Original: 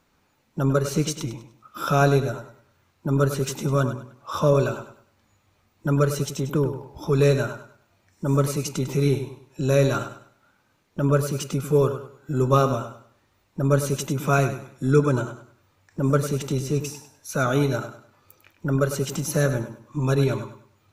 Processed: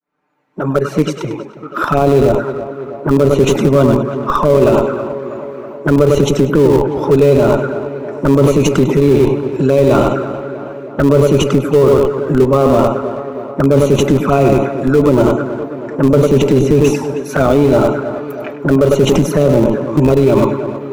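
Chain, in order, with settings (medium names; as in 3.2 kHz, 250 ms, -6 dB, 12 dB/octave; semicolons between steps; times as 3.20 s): fade-in on the opening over 4.50 s; high-pass 44 Hz 6 dB/octave; three-band isolator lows -16 dB, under 190 Hz, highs -18 dB, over 2.3 kHz; reverse; compression 10:1, threshold -31 dBFS, peak gain reduction 17 dB; reverse; touch-sensitive flanger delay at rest 6.7 ms, full sweep at -33 dBFS; in parallel at -9.5 dB: Schmitt trigger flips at -34 dBFS; on the sum: tape echo 321 ms, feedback 70%, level -15 dB, low-pass 2.6 kHz; loudness maximiser +30.5 dB; trim -1 dB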